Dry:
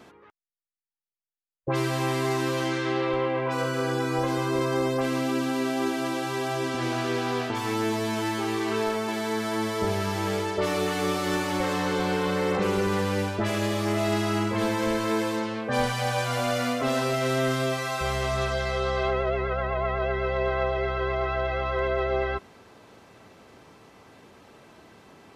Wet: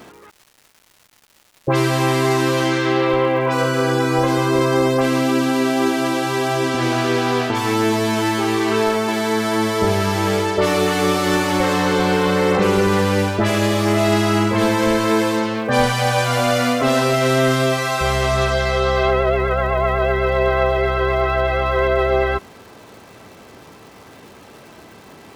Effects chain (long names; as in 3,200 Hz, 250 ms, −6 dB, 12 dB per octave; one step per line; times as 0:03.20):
surface crackle 420 per second −47 dBFS
level +9 dB